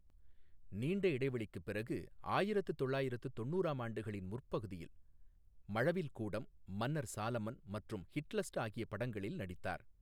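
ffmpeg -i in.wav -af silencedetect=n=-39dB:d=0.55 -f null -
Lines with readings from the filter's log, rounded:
silence_start: 0.00
silence_end: 0.74 | silence_duration: 0.74
silence_start: 4.83
silence_end: 5.70 | silence_duration: 0.87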